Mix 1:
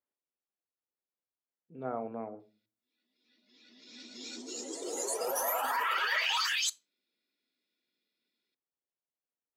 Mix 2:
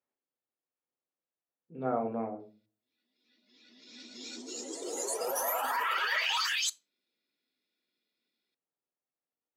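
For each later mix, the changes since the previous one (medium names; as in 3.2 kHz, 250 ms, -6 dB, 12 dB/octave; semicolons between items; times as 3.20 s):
speech: send +11.0 dB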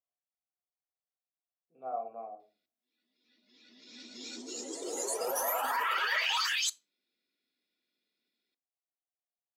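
speech: add vowel filter a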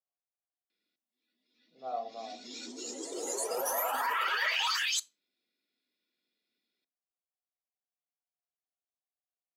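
background: entry -1.70 s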